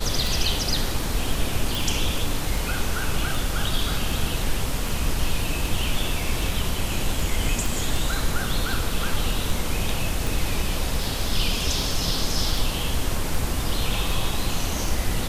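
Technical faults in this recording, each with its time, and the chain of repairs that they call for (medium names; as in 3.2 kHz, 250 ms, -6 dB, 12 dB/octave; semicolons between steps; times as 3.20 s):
tick 78 rpm
1.75 s: pop
7.66 s: pop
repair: de-click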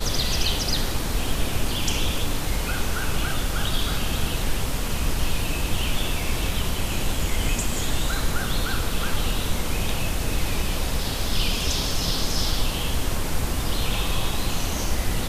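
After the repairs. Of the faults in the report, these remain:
nothing left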